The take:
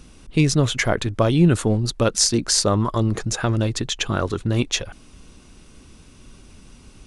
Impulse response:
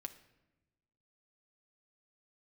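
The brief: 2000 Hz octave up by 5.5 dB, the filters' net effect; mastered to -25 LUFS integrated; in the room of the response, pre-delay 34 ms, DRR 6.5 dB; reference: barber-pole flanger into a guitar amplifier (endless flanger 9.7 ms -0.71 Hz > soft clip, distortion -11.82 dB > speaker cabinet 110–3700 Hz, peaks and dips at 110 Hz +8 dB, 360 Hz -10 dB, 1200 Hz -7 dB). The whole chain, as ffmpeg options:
-filter_complex "[0:a]equalizer=f=2k:t=o:g=8,asplit=2[a][b];[1:a]atrim=start_sample=2205,adelay=34[c];[b][c]afir=irnorm=-1:irlink=0,volume=-3dB[d];[a][d]amix=inputs=2:normalize=0,asplit=2[e][f];[f]adelay=9.7,afreqshift=-0.71[g];[e][g]amix=inputs=2:normalize=1,asoftclip=threshold=-17dB,highpass=110,equalizer=f=110:t=q:w=4:g=8,equalizer=f=360:t=q:w=4:g=-10,equalizer=f=1.2k:t=q:w=4:g=-7,lowpass=f=3.7k:w=0.5412,lowpass=f=3.7k:w=1.3066,volume=0.5dB"

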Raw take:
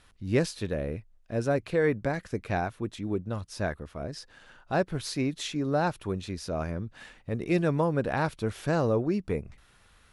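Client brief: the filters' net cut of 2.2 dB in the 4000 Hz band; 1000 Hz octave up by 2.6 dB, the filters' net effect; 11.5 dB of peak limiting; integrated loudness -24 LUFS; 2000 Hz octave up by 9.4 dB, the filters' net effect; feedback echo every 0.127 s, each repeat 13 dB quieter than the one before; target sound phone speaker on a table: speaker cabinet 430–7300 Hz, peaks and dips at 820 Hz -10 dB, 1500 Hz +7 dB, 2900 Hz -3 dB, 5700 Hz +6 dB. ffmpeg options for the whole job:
-af "equalizer=f=1k:t=o:g=7,equalizer=f=2k:t=o:g=5,equalizer=f=4k:t=o:g=-5.5,alimiter=limit=-21dB:level=0:latency=1,highpass=f=430:w=0.5412,highpass=f=430:w=1.3066,equalizer=f=820:t=q:w=4:g=-10,equalizer=f=1.5k:t=q:w=4:g=7,equalizer=f=2.9k:t=q:w=4:g=-3,equalizer=f=5.7k:t=q:w=4:g=6,lowpass=f=7.3k:w=0.5412,lowpass=f=7.3k:w=1.3066,aecho=1:1:127|254|381:0.224|0.0493|0.0108,volume=11.5dB"

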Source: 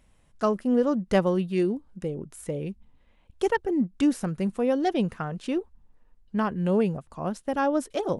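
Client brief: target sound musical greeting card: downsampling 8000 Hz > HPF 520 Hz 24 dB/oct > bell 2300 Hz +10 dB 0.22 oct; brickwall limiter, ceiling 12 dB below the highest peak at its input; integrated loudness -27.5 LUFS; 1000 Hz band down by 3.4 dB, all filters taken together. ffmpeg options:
-af "equalizer=f=1k:t=o:g=-4.5,alimiter=limit=-21.5dB:level=0:latency=1,aresample=8000,aresample=44100,highpass=f=520:w=0.5412,highpass=f=520:w=1.3066,equalizer=f=2.3k:t=o:w=0.22:g=10,volume=11.5dB"

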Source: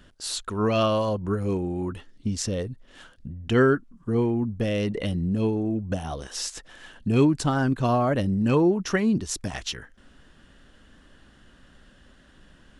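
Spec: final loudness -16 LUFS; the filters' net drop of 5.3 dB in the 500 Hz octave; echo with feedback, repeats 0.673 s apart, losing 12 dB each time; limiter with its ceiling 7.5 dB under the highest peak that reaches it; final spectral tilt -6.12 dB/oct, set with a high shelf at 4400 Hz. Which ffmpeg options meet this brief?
-af "equalizer=f=500:t=o:g=-7,highshelf=f=4.4k:g=-6,alimiter=limit=-18.5dB:level=0:latency=1,aecho=1:1:673|1346|2019:0.251|0.0628|0.0157,volume=13dB"

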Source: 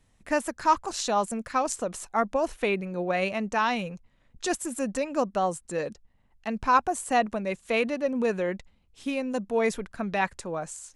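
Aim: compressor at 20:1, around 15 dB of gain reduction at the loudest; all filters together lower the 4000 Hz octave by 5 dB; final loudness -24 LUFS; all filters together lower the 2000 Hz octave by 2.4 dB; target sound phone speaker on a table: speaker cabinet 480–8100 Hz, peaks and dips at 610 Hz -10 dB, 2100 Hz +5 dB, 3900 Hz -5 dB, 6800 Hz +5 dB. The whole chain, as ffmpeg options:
-af "equalizer=f=2k:t=o:g=-4.5,equalizer=f=4k:t=o:g=-3.5,acompressor=threshold=-31dB:ratio=20,highpass=f=480:w=0.5412,highpass=f=480:w=1.3066,equalizer=f=610:t=q:w=4:g=-10,equalizer=f=2.1k:t=q:w=4:g=5,equalizer=f=3.9k:t=q:w=4:g=-5,equalizer=f=6.8k:t=q:w=4:g=5,lowpass=f=8.1k:w=0.5412,lowpass=f=8.1k:w=1.3066,volume=16.5dB"

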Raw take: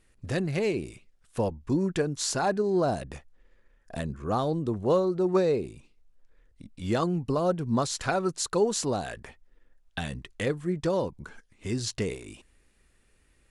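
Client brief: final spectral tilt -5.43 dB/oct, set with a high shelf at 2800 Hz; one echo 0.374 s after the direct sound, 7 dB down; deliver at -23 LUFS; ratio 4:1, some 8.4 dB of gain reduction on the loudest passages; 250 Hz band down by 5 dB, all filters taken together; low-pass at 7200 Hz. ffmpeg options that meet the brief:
-af "lowpass=7.2k,equalizer=f=250:t=o:g=-8,highshelf=f=2.8k:g=-7,acompressor=threshold=-32dB:ratio=4,aecho=1:1:374:0.447,volume=14dB"

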